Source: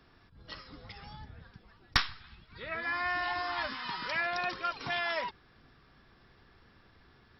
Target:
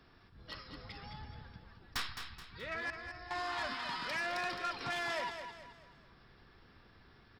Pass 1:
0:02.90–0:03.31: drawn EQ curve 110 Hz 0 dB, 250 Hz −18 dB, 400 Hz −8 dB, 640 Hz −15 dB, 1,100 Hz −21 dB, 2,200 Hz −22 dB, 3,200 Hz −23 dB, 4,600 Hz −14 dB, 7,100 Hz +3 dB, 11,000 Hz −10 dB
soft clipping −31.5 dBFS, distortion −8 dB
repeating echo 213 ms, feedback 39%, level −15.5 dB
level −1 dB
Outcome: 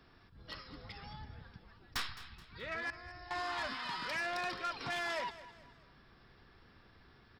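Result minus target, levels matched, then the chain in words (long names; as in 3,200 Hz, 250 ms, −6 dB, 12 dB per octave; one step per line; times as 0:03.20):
echo-to-direct −7.5 dB
0:02.90–0:03.31: drawn EQ curve 110 Hz 0 dB, 250 Hz −18 dB, 400 Hz −8 dB, 640 Hz −15 dB, 1,100 Hz −21 dB, 2,200 Hz −22 dB, 3,200 Hz −23 dB, 4,600 Hz −14 dB, 7,100 Hz +3 dB, 11,000 Hz −10 dB
soft clipping −31.5 dBFS, distortion −8 dB
repeating echo 213 ms, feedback 39%, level −8 dB
level −1 dB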